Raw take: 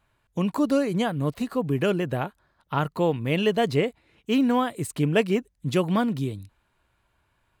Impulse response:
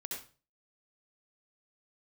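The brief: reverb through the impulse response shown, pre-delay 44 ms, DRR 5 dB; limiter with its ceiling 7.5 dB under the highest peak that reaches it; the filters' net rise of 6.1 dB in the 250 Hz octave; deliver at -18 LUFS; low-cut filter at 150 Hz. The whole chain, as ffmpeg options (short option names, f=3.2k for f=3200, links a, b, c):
-filter_complex "[0:a]highpass=150,equalizer=f=250:t=o:g=8,alimiter=limit=-13dB:level=0:latency=1,asplit=2[a][b];[1:a]atrim=start_sample=2205,adelay=44[c];[b][c]afir=irnorm=-1:irlink=0,volume=-4.5dB[d];[a][d]amix=inputs=2:normalize=0,volume=4dB"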